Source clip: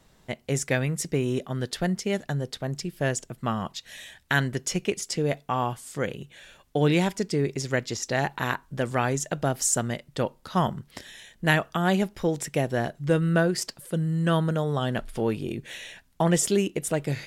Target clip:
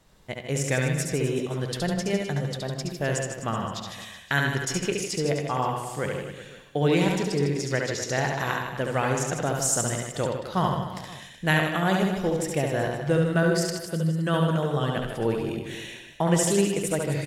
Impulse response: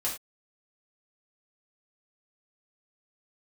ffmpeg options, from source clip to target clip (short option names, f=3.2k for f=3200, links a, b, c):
-filter_complex "[0:a]equalizer=f=240:t=o:w=0.3:g=-4,aecho=1:1:70|154|254.8|375.8|520.9:0.631|0.398|0.251|0.158|0.1,asplit=2[a][b];[1:a]atrim=start_sample=2205,lowpass=5k,adelay=68[c];[b][c]afir=irnorm=-1:irlink=0,volume=-14dB[d];[a][d]amix=inputs=2:normalize=0,volume=-1.5dB"